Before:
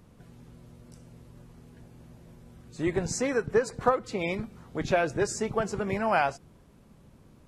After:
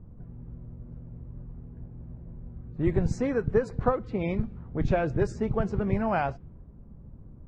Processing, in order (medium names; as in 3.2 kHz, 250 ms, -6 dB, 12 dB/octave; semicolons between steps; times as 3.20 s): RIAA curve playback; level-controlled noise filter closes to 1 kHz, open at -16.5 dBFS; trim -3.5 dB